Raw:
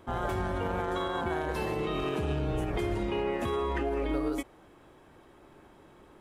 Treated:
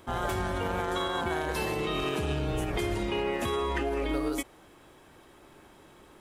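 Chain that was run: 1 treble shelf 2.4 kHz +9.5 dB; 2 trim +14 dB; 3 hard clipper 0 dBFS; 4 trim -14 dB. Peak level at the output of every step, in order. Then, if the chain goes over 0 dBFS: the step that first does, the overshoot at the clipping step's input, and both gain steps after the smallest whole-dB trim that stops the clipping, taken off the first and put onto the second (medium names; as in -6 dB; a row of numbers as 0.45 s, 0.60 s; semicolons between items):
-18.5 dBFS, -4.5 dBFS, -4.5 dBFS, -18.5 dBFS; nothing clips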